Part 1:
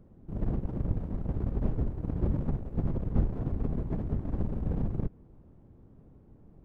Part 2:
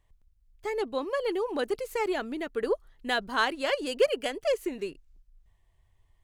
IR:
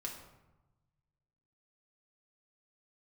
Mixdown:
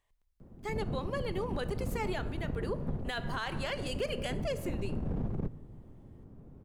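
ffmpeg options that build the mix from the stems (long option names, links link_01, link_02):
-filter_complex "[0:a]acrossover=split=89|400[link_01][link_02][link_03];[link_01]acompressor=threshold=-36dB:ratio=4[link_04];[link_02]acompressor=threshold=-34dB:ratio=4[link_05];[link_03]acompressor=threshold=-44dB:ratio=4[link_06];[link_04][link_05][link_06]amix=inputs=3:normalize=0,adelay=400,volume=1.5dB,asplit=2[link_07][link_08];[link_08]volume=-11.5dB[link_09];[1:a]lowshelf=frequency=300:gain=-12,volume=-4.5dB,asplit=3[link_10][link_11][link_12];[link_11]volume=-6.5dB[link_13];[link_12]apad=whole_len=310769[link_14];[link_07][link_14]sidechaincompress=threshold=-37dB:ratio=8:attack=16:release=486[link_15];[2:a]atrim=start_sample=2205[link_16];[link_09][link_13]amix=inputs=2:normalize=0[link_17];[link_17][link_16]afir=irnorm=-1:irlink=0[link_18];[link_15][link_10][link_18]amix=inputs=3:normalize=0,alimiter=level_in=1dB:limit=-24dB:level=0:latency=1:release=50,volume=-1dB"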